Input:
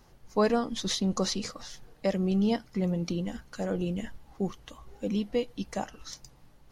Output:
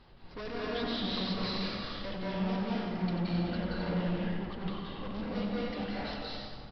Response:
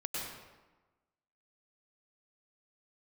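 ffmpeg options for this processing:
-filter_complex "[0:a]lowpass=f=3.8k:t=q:w=1.7,aresample=11025,asoftclip=type=tanh:threshold=-39.5dB,aresample=44100,aecho=1:1:92:0.422[a];[1:a]atrim=start_sample=2205,asetrate=24696,aresample=44100[b];[a][b]afir=irnorm=-1:irlink=0"

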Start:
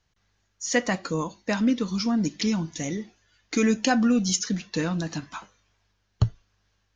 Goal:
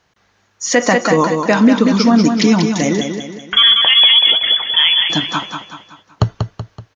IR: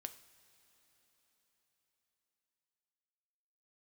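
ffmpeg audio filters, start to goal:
-filter_complex "[0:a]highpass=f=420:p=1,highshelf=f=2.2k:g=-10.5,asettb=1/sr,asplit=3[a][b][c];[a]atrim=end=3.014[d];[b]atrim=start=3.01:end=5.1,asetpts=PTS-STARTPTS,afade=t=in:d=0.004:c=qsin,afade=t=out:st=2.086:d=0.004:c=qsin,lowpass=f=3.1k:t=q:w=0.5098,lowpass=f=3.1k:t=q:w=0.6013,lowpass=f=3.1k:t=q:w=0.9,lowpass=f=3.1k:t=q:w=2.563,afreqshift=-3600[e];[c]atrim=start=5.096[f];[d][e]acrossfade=d=0.004:c1=hsin:c2=qsin[g];[g][f]acrossfade=d=0.004:c1=qsin:c2=hsin,aecho=1:1:189|378|567|756|945:0.473|0.208|0.0916|0.0403|0.0177,alimiter=level_in=20.5dB:limit=-1dB:release=50:level=0:latency=1,volume=-1dB"

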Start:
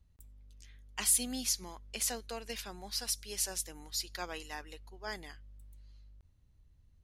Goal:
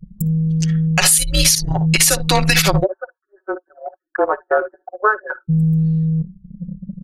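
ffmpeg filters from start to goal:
-filter_complex "[0:a]equalizer=f=430:t=o:w=0.28:g=-10.5,aecho=1:1:5.3:0.91,aecho=1:1:58|75:0.335|0.2,afreqshift=-210,acompressor=threshold=-43dB:ratio=10,asplit=3[a][b][c];[a]afade=t=out:st=2.83:d=0.02[d];[b]asuperpass=centerf=740:order=20:qfactor=0.56,afade=t=in:st=2.83:d=0.02,afade=t=out:st=5.48:d=0.02[e];[c]afade=t=in:st=5.48:d=0.02[f];[d][e][f]amix=inputs=3:normalize=0,afftfilt=real='re*gte(hypot(re,im),0.000251)':imag='im*gte(hypot(re,im),0.000251)':win_size=1024:overlap=0.75,anlmdn=0.00631,alimiter=level_in=35.5dB:limit=-1dB:release=50:level=0:latency=1,volume=-1dB"

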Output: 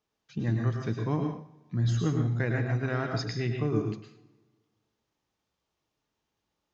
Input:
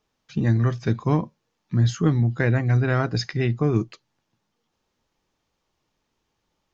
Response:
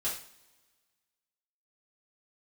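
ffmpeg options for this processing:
-filter_complex "[0:a]highpass=52,asplit=2[a][b];[1:a]atrim=start_sample=2205,adelay=101[c];[b][c]afir=irnorm=-1:irlink=0,volume=-6.5dB[d];[a][d]amix=inputs=2:normalize=0,volume=-8.5dB"

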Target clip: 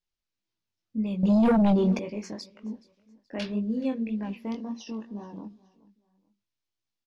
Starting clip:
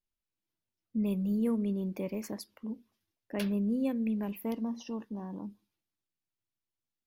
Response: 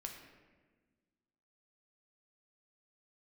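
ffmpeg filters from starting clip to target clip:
-filter_complex "[0:a]lowpass=f=5.9k:w=0.5412,lowpass=f=5.9k:w=1.3066,highshelf=f=4.3k:g=9,aecho=1:1:425|850:0.0794|0.0262,flanger=delay=18:depth=5.2:speed=1.9,asettb=1/sr,asplit=3[a][b][c];[a]atrim=end=1.234[d];[b]atrim=start=1.23:end=1.99,asetpts=PTS-STARTPTS,afade=t=in:d=0.004:c=qsin,afade=t=out:st=0.756:d=0.004:c=qsin,aeval=exprs='0.0841*sin(PI/2*3.16*val(0)/0.0841)':c=same[e];[c]atrim=start=1.986[f];[d][e]acrossfade=d=0.004:c1=hsin:c2=qsin[g];[g][f]acrossfade=d=0.004:c1=qsin:c2=hsin,volume=4dB"

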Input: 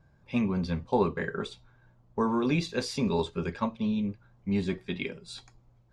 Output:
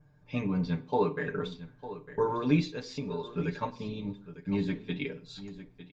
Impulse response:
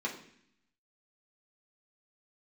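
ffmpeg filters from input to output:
-filter_complex "[0:a]asplit=3[a][b][c];[a]afade=t=out:st=0.75:d=0.02[d];[b]highpass=f=180:p=1,afade=t=in:st=0.75:d=0.02,afade=t=out:st=1.24:d=0.02[e];[c]afade=t=in:st=1.24:d=0.02[f];[d][e][f]amix=inputs=3:normalize=0,asettb=1/sr,asplit=3[g][h][i];[g]atrim=end=4.074[j];[h]atrim=start=4.07:end=5.21,asetpts=PTS-STARTPTS,afade=t=in:d=0.004:c=qsin,afade=t=out:st=1.136:d=0.004:c=qsin,agate=range=-40dB:threshold=-56dB:ratio=16:detection=peak[k];[i]atrim=start=5.206[l];[j][k]acrossfade=d=0.004:c1=hsin:c2=qsin[m];[m][l]acrossfade=d=0.004:c1=qsin:c2=hsin,adynamicequalizer=threshold=0.002:dfrequency=3900:dqfactor=4.3:tfrequency=3900:tqfactor=4.3:attack=5:release=100:ratio=0.375:range=1.5:mode=boostabove:tftype=bell,aecho=1:1:6.7:0.81,asplit=3[n][o][p];[n]afade=t=out:st=2.7:d=0.02[q];[o]acompressor=threshold=-31dB:ratio=6,afade=t=in:st=2.7:d=0.02,afade=t=out:st=3.29:d=0.02[r];[p]afade=t=in:st=3.29:d=0.02[s];[q][r][s]amix=inputs=3:normalize=0,aecho=1:1:903:0.2,asplit=2[t][u];[1:a]atrim=start_sample=2205,afade=t=out:st=0.22:d=0.01,atrim=end_sample=10143[v];[u][v]afir=irnorm=-1:irlink=0,volume=-13.5dB[w];[t][w]amix=inputs=2:normalize=0,aresample=16000,aresample=44100,volume=-3.5dB" -ar 48000 -c:a libopus -b:a 48k

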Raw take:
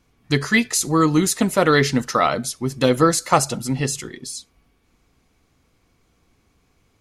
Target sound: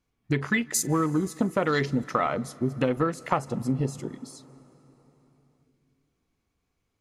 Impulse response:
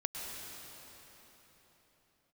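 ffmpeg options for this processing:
-filter_complex "[0:a]afwtdn=0.0447,acompressor=threshold=-23dB:ratio=5,asplit=2[a][b];[1:a]atrim=start_sample=2205,adelay=43[c];[b][c]afir=irnorm=-1:irlink=0,volume=-21dB[d];[a][d]amix=inputs=2:normalize=0,volume=1dB"

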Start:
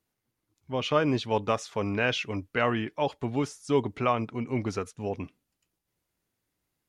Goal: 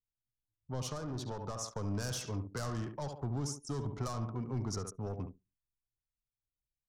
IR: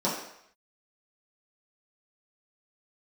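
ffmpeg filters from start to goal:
-filter_complex "[0:a]aecho=1:1:70|140|210|280:0.299|0.11|0.0409|0.0151,asoftclip=type=tanh:threshold=-26dB,asplit=3[a][b][c];[a]afade=t=out:st=0.89:d=0.02[d];[b]acompressor=threshold=-33dB:ratio=6,afade=t=in:st=0.89:d=0.02,afade=t=out:st=1.67:d=0.02[e];[c]afade=t=in:st=1.67:d=0.02[f];[d][e][f]amix=inputs=3:normalize=0,anlmdn=0.158,acrossover=split=200|3000[g][h][i];[h]acompressor=threshold=-37dB:ratio=6[j];[g][j][i]amix=inputs=3:normalize=0,firequalizer=gain_entry='entry(150,0);entry(220,-5);entry(1200,-1);entry(2400,-18);entry(5500,4)':delay=0.05:min_phase=1,volume=1dB"

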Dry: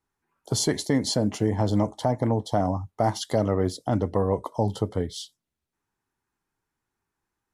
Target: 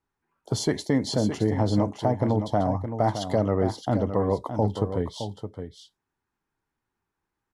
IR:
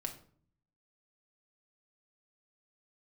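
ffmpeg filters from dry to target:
-filter_complex "[0:a]highshelf=f=5.8k:g=-11,asplit=2[a][b];[b]aecho=0:1:616:0.355[c];[a][c]amix=inputs=2:normalize=0"

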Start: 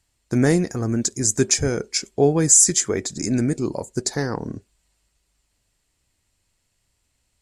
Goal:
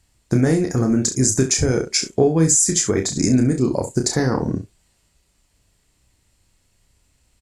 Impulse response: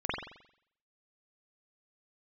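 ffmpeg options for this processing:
-filter_complex "[0:a]lowshelf=f=460:g=4.5,acompressor=threshold=-19dB:ratio=6,asplit=2[a][b];[b]aecho=0:1:31|67:0.531|0.251[c];[a][c]amix=inputs=2:normalize=0,volume=4.5dB"

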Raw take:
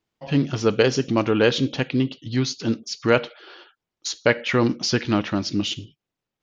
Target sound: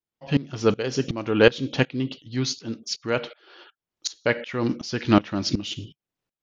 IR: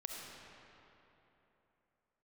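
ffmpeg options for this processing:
-af "dynaudnorm=f=240:g=5:m=11.5dB,aeval=exprs='val(0)*pow(10,-19*if(lt(mod(-2.7*n/s,1),2*abs(-2.7)/1000),1-mod(-2.7*n/s,1)/(2*abs(-2.7)/1000),(mod(-2.7*n/s,1)-2*abs(-2.7)/1000)/(1-2*abs(-2.7)/1000))/20)':c=same,volume=1dB"

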